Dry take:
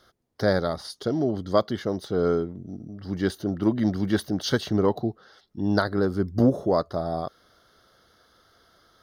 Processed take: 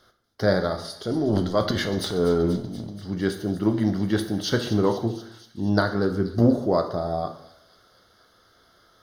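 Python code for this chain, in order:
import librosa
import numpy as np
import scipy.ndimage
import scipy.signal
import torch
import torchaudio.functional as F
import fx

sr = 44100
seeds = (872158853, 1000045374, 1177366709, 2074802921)

y = fx.transient(x, sr, attack_db=-4, sustain_db=12, at=(1.02, 2.91), fade=0.02)
y = fx.echo_wet_highpass(y, sr, ms=240, feedback_pct=70, hz=3800.0, wet_db=-11.5)
y = fx.rev_plate(y, sr, seeds[0], rt60_s=0.76, hf_ratio=0.8, predelay_ms=0, drr_db=5.5)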